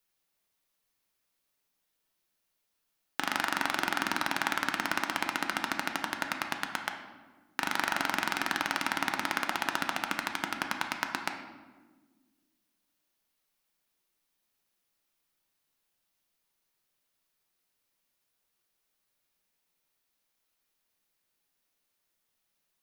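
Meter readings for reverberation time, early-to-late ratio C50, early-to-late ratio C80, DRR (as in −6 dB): 1.4 s, 6.5 dB, 9.0 dB, 3.5 dB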